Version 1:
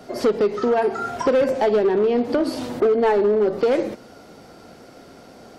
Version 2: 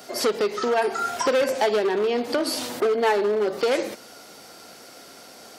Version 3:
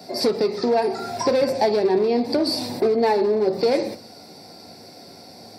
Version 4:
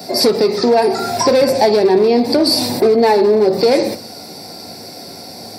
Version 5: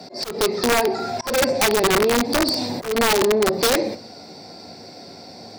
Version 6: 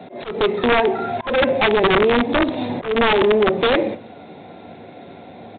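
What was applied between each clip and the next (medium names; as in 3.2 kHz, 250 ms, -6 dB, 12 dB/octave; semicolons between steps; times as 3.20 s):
tilt EQ +3.5 dB/octave
reverberation RT60 0.40 s, pre-delay 3 ms, DRR 9.5 dB; trim -7 dB
in parallel at 0 dB: peak limiter -17.5 dBFS, peak gain reduction 8.5 dB; on the sum: treble shelf 7.5 kHz +8.5 dB; trim +3.5 dB
boxcar filter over 4 samples; integer overflow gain 6 dB; slow attack 191 ms; trim -6 dB
in parallel at -9 dB: companded quantiser 4-bit; on the sum: resampled via 8 kHz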